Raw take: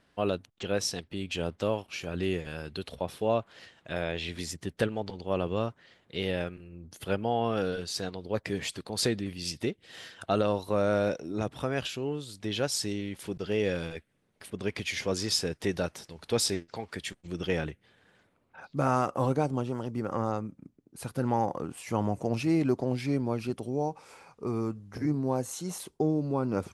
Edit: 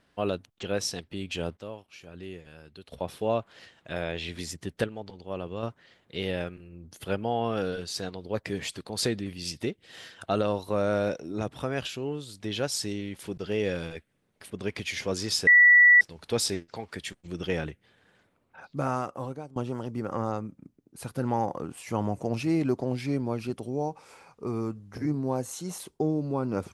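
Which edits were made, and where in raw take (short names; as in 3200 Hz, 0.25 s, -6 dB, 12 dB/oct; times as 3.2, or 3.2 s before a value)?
1.57–2.92 gain -11 dB
4.84–5.63 gain -5.5 dB
15.47–16.01 bleep 1950 Hz -12.5 dBFS
18.61–19.56 fade out, to -20.5 dB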